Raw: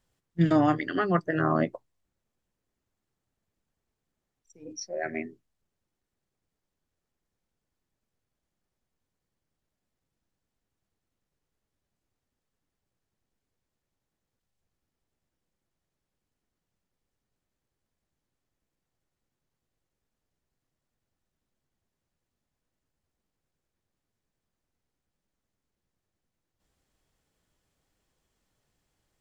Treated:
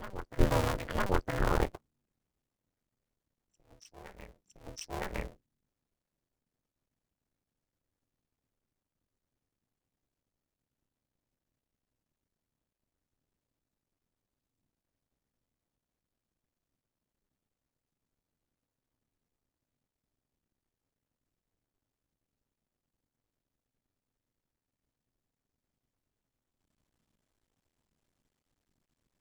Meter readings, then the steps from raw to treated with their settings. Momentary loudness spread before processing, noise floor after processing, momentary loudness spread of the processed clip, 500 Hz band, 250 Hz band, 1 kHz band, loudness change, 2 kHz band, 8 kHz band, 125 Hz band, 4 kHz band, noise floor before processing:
18 LU, under -85 dBFS, 22 LU, -5.0 dB, -11.0 dB, -5.5 dB, -6.5 dB, -5.0 dB, no reading, -4.0 dB, 0.0 dB, under -85 dBFS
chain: cycle switcher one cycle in 2, muted; on a send: reverse echo 961 ms -13 dB; on the sum: one-sided clip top -17.5 dBFS; ring modulator 190 Hz; bass shelf 66 Hz +11.5 dB

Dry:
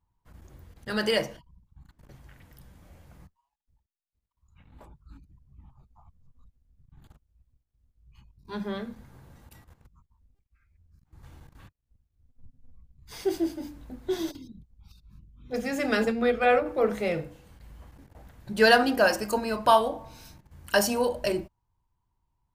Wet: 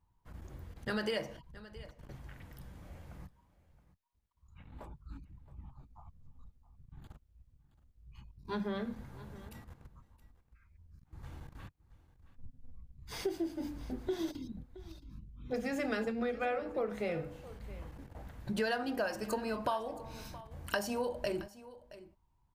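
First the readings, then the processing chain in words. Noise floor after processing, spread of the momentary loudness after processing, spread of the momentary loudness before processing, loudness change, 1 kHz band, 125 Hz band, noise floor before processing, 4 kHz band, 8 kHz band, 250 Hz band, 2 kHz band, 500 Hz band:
-72 dBFS, 20 LU, 18 LU, -12.5 dB, -13.0 dB, -3.0 dB, -80 dBFS, -12.5 dB, -12.0 dB, -7.5 dB, -12.5 dB, -10.5 dB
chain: treble shelf 4.3 kHz -5.5 dB; compression 5:1, threshold -35 dBFS, peak gain reduction 19 dB; delay 671 ms -17.5 dB; trim +2 dB

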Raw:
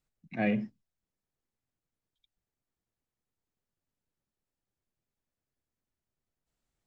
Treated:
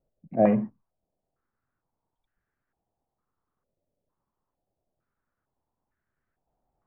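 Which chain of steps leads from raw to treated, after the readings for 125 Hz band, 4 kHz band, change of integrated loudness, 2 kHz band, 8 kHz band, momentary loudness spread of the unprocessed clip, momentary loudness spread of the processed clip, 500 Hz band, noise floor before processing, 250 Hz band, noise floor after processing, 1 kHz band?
+6.0 dB, under -10 dB, +7.0 dB, -6.5 dB, no reading, 14 LU, 14 LU, +12.0 dB, under -85 dBFS, +6.0 dB, -85 dBFS, +10.0 dB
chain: step-sequenced low-pass 2.2 Hz 590–1600 Hz; trim +5.5 dB

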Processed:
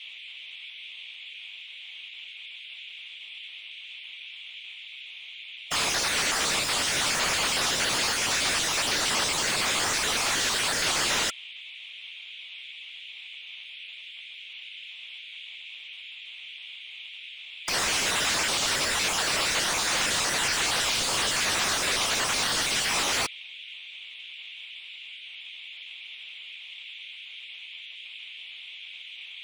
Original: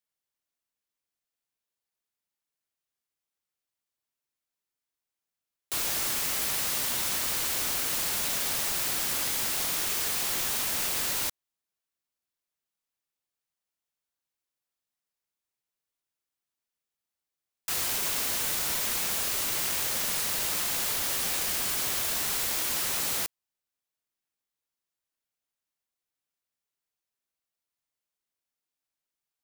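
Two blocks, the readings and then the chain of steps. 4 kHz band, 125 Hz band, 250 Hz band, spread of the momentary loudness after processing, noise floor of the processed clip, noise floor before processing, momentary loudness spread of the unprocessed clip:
+8.0 dB, +4.5 dB, +6.0 dB, 16 LU, -44 dBFS, under -85 dBFS, 1 LU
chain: random holes in the spectrogram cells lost 34%; overdrive pedal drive 35 dB, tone 4.2 kHz, clips at -16.5 dBFS; Savitzky-Golay filter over 9 samples; band noise 2.2–3.6 kHz -45 dBFS; trim +2.5 dB

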